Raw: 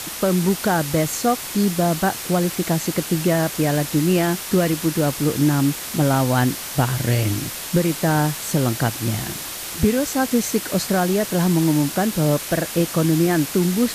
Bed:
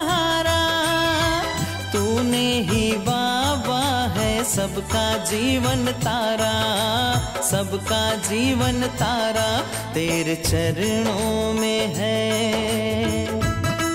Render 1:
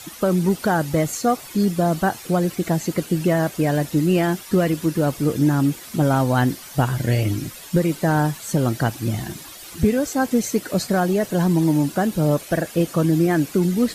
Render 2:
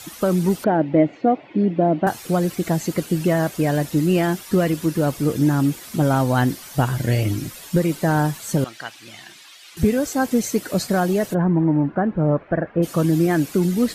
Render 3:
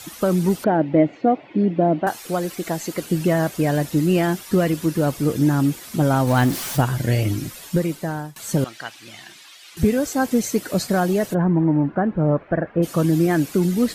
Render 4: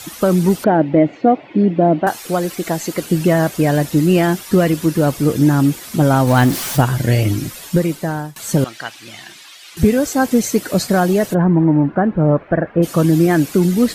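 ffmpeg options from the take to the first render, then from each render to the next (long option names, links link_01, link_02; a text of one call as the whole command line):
ffmpeg -i in.wav -af "afftdn=noise_reduction=12:noise_floor=-31" out.wav
ffmpeg -i in.wav -filter_complex "[0:a]asettb=1/sr,asplit=3[link_01][link_02][link_03];[link_01]atrim=end=0.644[link_04];[link_02]atrim=start=0.64:end=2.07,asetpts=PTS-STARTPTS,afade=type=in:duration=0.004:curve=qsin,afade=type=out:start_time=1.426:duration=0.004:curve=qsin,highpass=150,equalizer=frequency=300:width_type=q:width=4:gain=10,equalizer=frequency=620:width_type=q:width=4:gain=5,equalizer=frequency=1200:width_type=q:width=4:gain=-10,equalizer=frequency=1600:width_type=q:width=4:gain=-5,lowpass=frequency=2500:width=0.5412,lowpass=frequency=2500:width=1.3066[link_05];[link_03]atrim=start=2.066[link_06];[link_04][link_05]acrossfade=duration=0.004:curve1=hsin:curve2=qsin[link_07];[link_07][link_06]acrossfade=duration=0.004:curve1=qsin:curve2=hsin,asettb=1/sr,asplit=3[link_08][link_09][link_10];[link_08]atrim=end=8.644[link_11];[link_09]atrim=start=8.64:end=9.77,asetpts=PTS-STARTPTS,afade=type=in:duration=0.004:curve=qsin,afade=type=out:start_time=1.126:duration=0.004:curve=qsin,bandpass=frequency=2800:width_type=q:width=0.97[link_12];[link_10]atrim=start=9.766[link_13];[link_11][link_12]acrossfade=duration=0.004:curve1=hsin:curve2=qsin[link_14];[link_14][link_13]acrossfade=duration=0.004:curve1=qsin:curve2=hsin,asplit=3[link_15][link_16][link_17];[link_15]afade=type=out:start_time=11.33:duration=0.02[link_18];[link_16]lowpass=frequency=1800:width=0.5412,lowpass=frequency=1800:width=1.3066,afade=type=in:start_time=11.33:duration=0.02,afade=type=out:start_time=12.82:duration=0.02[link_19];[link_17]afade=type=in:start_time=12.82:duration=0.02[link_20];[link_18][link_19][link_20]amix=inputs=3:normalize=0" out.wav
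ffmpeg -i in.wav -filter_complex "[0:a]asettb=1/sr,asplit=3[link_01][link_02][link_03];[link_01]atrim=end=2.024[link_04];[link_02]atrim=start=2.02:end=3.03,asetpts=PTS-STARTPTS,afade=type=in:duration=0.004:curve=qsin,afade=type=out:start_time=1.006:duration=0.004:curve=qsin,equalizer=frequency=95:width=0.53:gain=-11.5[link_05];[link_03]atrim=start=3.026[link_06];[link_04][link_05]acrossfade=duration=0.004:curve1=hsin:curve2=qsin[link_07];[link_07][link_06]acrossfade=duration=0.004:curve1=qsin:curve2=hsin,asettb=1/sr,asplit=3[link_08][link_09][link_10];[link_08]atrim=end=6.274[link_11];[link_09]atrim=start=6.27:end=6.81,asetpts=PTS-STARTPTS,afade=type=in:duration=0.004:curve=qsin,afade=type=out:start_time=0.536:duration=0.004:curve=qsin,aeval=exprs='val(0)+0.5*0.0531*sgn(val(0))':channel_layout=same[link_12];[link_10]atrim=start=6.806[link_13];[link_11][link_12]acrossfade=duration=0.004:curve1=hsin:curve2=qsin[link_14];[link_14][link_13]acrossfade=duration=0.004:curve1=qsin:curve2=hsin,asplit=2[link_15][link_16];[link_15]atrim=end=8.36,asetpts=PTS-STARTPTS,afade=type=out:start_time=7.65:duration=0.71:silence=0.0891251[link_17];[link_16]atrim=start=8.36,asetpts=PTS-STARTPTS,afade=type=in:duration=0.004:curve=hsin:silence=0.0891251[link_18];[link_17][link_18]concat=n=2:v=0:a=1" out.wav
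ffmpeg -i in.wav -af "volume=5dB,alimiter=limit=-2dB:level=0:latency=1" out.wav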